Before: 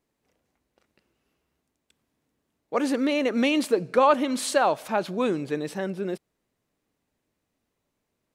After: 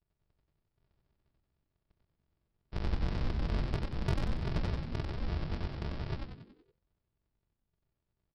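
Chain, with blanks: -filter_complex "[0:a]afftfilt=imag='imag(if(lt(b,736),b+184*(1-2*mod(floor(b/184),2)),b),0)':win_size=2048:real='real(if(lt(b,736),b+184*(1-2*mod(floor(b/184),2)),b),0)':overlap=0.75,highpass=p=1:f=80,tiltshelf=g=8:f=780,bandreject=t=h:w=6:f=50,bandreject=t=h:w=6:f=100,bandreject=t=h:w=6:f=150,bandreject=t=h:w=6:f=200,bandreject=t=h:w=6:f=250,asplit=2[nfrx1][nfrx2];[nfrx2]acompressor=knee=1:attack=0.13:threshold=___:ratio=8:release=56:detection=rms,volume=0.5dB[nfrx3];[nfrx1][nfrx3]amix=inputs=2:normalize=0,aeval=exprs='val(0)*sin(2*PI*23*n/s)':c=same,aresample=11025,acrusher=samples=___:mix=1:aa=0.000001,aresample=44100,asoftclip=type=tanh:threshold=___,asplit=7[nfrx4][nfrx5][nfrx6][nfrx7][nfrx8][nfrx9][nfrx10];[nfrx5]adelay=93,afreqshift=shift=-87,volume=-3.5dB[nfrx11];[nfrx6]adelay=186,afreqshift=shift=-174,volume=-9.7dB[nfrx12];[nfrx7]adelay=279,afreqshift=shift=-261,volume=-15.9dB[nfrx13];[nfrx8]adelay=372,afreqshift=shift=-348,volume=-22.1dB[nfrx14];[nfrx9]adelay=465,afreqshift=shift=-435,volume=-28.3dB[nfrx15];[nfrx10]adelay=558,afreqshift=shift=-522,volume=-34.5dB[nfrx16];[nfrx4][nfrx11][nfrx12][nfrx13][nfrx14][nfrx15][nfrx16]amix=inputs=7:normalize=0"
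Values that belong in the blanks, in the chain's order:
-38dB, 42, -24.5dB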